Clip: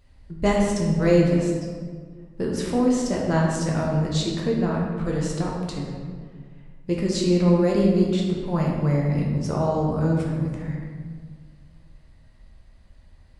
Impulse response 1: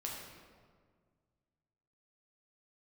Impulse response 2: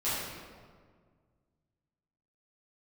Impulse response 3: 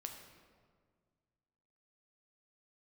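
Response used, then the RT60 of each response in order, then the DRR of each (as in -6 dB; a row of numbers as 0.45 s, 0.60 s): 1; 1.8 s, 1.8 s, 1.8 s; -3.0 dB, -13.0 dB, 3.0 dB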